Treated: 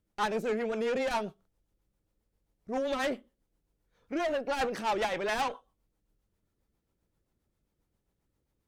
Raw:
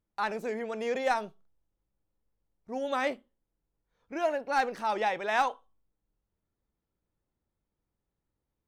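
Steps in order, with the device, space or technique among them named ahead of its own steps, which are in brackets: overdriven rotary cabinet (tube stage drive 32 dB, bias 0.25; rotary speaker horn 7.5 Hz); gain +8 dB

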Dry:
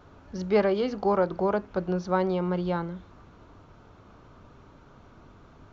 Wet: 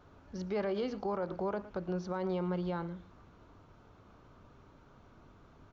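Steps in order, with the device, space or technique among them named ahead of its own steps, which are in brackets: echo 0.112 s -19.5 dB; clipper into limiter (hard clip -12 dBFS, distortion -52 dB; limiter -20 dBFS, peak gain reduction 8 dB); gain -6.5 dB

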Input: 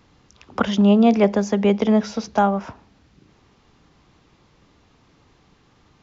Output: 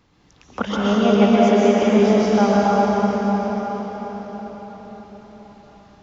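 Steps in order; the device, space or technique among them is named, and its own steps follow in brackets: 0.78–1.83 HPF 200 Hz; cathedral (reverb RT60 5.9 s, pre-delay 0.115 s, DRR -7.5 dB); gain -4 dB

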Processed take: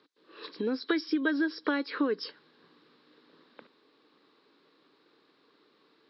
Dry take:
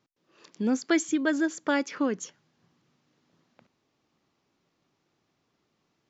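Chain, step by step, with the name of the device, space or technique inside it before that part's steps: hearing aid with frequency lowering (nonlinear frequency compression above 3000 Hz 1.5:1; compressor 4:1, threshold -38 dBFS, peak gain reduction 16 dB; speaker cabinet 280–6600 Hz, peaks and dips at 290 Hz +7 dB, 450 Hz +10 dB, 700 Hz -6 dB, 1100 Hz +5 dB, 1600 Hz +6 dB, 3900 Hz +9 dB); gain +6.5 dB

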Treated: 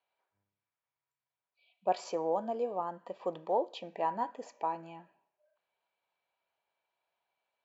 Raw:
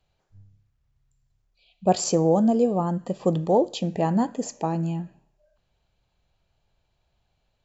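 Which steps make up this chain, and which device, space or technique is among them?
tin-can telephone (BPF 600–2800 Hz; small resonant body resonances 970/2300 Hz, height 11 dB, ringing for 95 ms); gain -6 dB

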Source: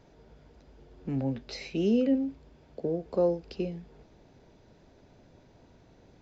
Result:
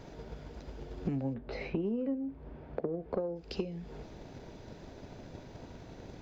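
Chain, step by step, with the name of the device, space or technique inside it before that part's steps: 1.33–3.35 LPF 1300 Hz -> 2200 Hz 12 dB/oct; drum-bus smash (transient shaper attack +7 dB, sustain +1 dB; compressor 16:1, threshold -38 dBFS, peak gain reduction 23 dB; soft clip -30 dBFS, distortion -20 dB); gain +8.5 dB

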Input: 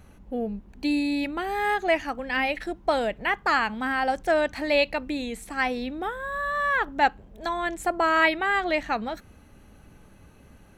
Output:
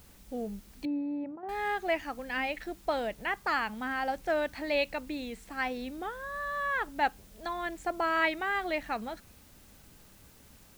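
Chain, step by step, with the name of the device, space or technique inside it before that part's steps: worn cassette (LPF 6600 Hz; wow and flutter 23 cents; level dips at 1.36, 67 ms -8 dB; white noise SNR 26 dB); 0.85–1.49 Chebyshev band-pass 150–820 Hz, order 2; gain -7 dB

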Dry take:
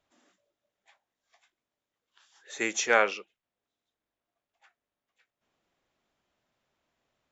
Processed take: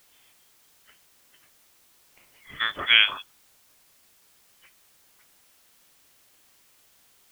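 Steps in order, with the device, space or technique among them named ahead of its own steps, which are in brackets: scrambled radio voice (BPF 390–2800 Hz; inverted band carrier 3800 Hz; white noise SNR 28 dB); gain +5.5 dB

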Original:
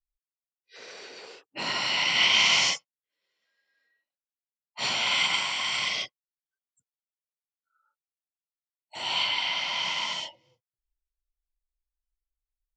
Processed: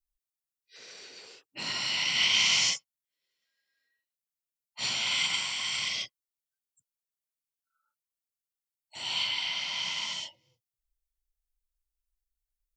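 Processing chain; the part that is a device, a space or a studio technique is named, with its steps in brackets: smiley-face EQ (low shelf 120 Hz +6 dB; bell 710 Hz -6.5 dB 2.5 oct; high shelf 5200 Hz +8.5 dB); gain -4 dB

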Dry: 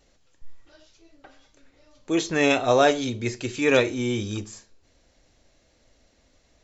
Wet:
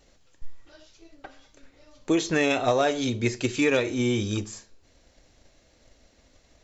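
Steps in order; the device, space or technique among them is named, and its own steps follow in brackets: drum-bus smash (transient shaper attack +5 dB, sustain 0 dB; compressor 6:1, threshold -20 dBFS, peak gain reduction 8 dB; soft clip -12 dBFS, distortion -25 dB); gain +2 dB

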